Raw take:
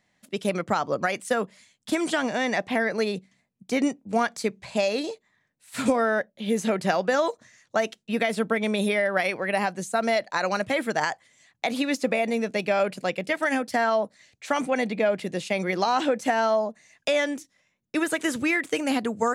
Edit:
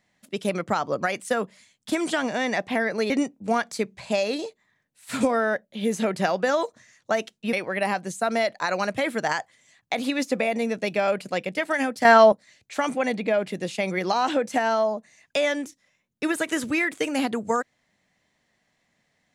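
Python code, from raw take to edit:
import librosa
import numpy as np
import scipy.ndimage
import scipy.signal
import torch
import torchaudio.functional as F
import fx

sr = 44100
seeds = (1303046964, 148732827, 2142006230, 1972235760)

y = fx.edit(x, sr, fx.cut(start_s=3.1, length_s=0.65),
    fx.cut(start_s=8.18, length_s=1.07),
    fx.clip_gain(start_s=13.77, length_s=0.27, db=9.5), tone=tone)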